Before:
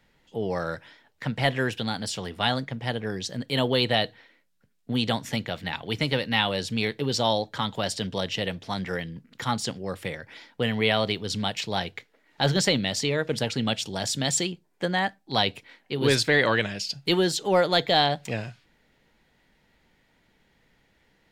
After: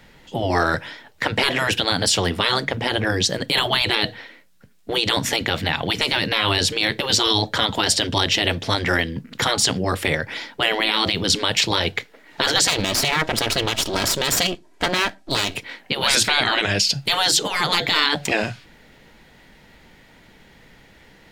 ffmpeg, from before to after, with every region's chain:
-filter_complex "[0:a]asettb=1/sr,asplit=3[s0][s1][s2];[s0]atrim=end=12.674[s3];[s1]atrim=start=12.67:end=15.55,asetpts=PTS-STARTPTS,afade=t=in:d=0.004:c=qsin,afade=t=out:st=2.876:d=0.004:c=qsin,lowpass=9400,aecho=1:1:3.1:0.6,atrim=end_sample=127008,aeval=exprs='max(val(0),0)':c=same[s4];[s2]atrim=start=15.546[s5];[s3][s4]acrossfade=d=0.004:c1=hsin:c2=qsin[s6];[s6][s5]acrossfade=d=0.004:c1=qsin:c2=hsin,afftfilt=real='re*lt(hypot(re,im),0.141)':imag='im*lt(hypot(re,im),0.141)':win_size=1024:overlap=0.75,alimiter=level_in=10.6:limit=0.891:release=50:level=0:latency=1,volume=0.531"

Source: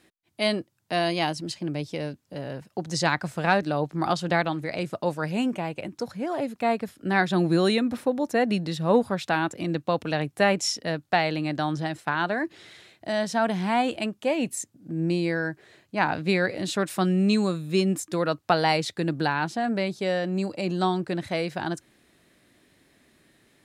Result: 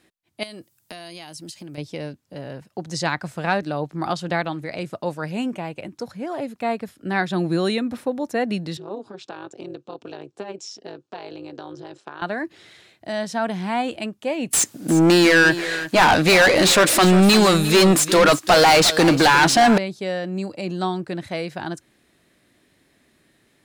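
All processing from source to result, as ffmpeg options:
-filter_complex "[0:a]asettb=1/sr,asplit=3[s0][s1][s2];[s0]atrim=end=0.434[s3];[s1]atrim=start=0.43:end=1.78,asetpts=PTS-STARTPTS,afade=t=in:d=0.004:c=qsin,afade=t=out:st=1.346:d=0.004:c=qsin,aemphasis=mode=production:type=75kf,acompressor=threshold=0.0224:ratio=16:attack=3.2:release=140:knee=1:detection=peak[s4];[s2]atrim=start=1.776[s5];[s3][s4]acrossfade=d=0.004:c1=hsin:c2=qsin[s6];[s6][s5]acrossfade=d=0.004:c1=qsin:c2=hsin,asettb=1/sr,asplit=3[s7][s8][s9];[s7]atrim=end=8.774[s10];[s8]atrim=start=8.77:end=12.22,asetpts=PTS-STARTPTS,afade=t=in:d=0.004:c=qsin,afade=t=out:st=3.446:d=0.004:c=qsin,acompressor=threshold=0.0282:ratio=2.5:attack=3.2:release=140:knee=1:detection=peak,tremolo=f=210:d=0.889,highpass=f=140:w=0.5412,highpass=f=140:w=1.3066,equalizer=f=160:t=q:w=4:g=-6,equalizer=f=390:t=q:w=4:g=8,equalizer=f=2000:t=q:w=4:g=-10,lowpass=f=7300:w=0.5412,lowpass=f=7300:w=1.3066[s11];[s9]atrim=start=12.216[s12];[s10][s11]acrossfade=d=0.004:c1=hsin:c2=qsin[s13];[s13][s12]acrossfade=d=0.004:c1=qsin:c2=hsin,asettb=1/sr,asplit=3[s14][s15][s16];[s14]atrim=end=14.534[s17];[s15]atrim=start=14.53:end=19.78,asetpts=PTS-STARTPTS,afade=t=in:d=0.004:c=qsin,afade=t=out:st=5.246:d=0.004:c=qsin,highshelf=f=5300:g=10.5,asplit=2[s18][s19];[s19]highpass=f=720:p=1,volume=39.8,asoftclip=type=tanh:threshold=0.531[s20];[s18][s20]amix=inputs=2:normalize=0,lowpass=f=4400:p=1,volume=0.501,aecho=1:1:353:0.211,atrim=end_sample=231525[s21];[s16]atrim=start=19.776[s22];[s17][s21]acrossfade=d=0.004:c1=hsin:c2=qsin[s23];[s23][s22]acrossfade=d=0.004:c1=qsin:c2=hsin"

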